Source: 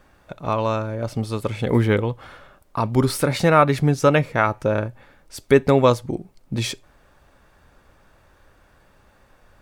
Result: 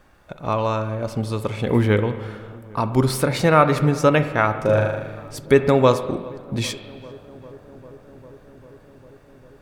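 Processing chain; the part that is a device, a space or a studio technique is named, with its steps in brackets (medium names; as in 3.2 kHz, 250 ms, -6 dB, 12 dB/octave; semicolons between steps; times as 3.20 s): 4.57–5.38 s: flutter echo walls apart 6.7 m, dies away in 0.99 s; dub delay into a spring reverb (filtered feedback delay 399 ms, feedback 85%, low-pass 1.8 kHz, level -23 dB; spring tank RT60 1.4 s, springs 38/46 ms, chirp 35 ms, DRR 10 dB)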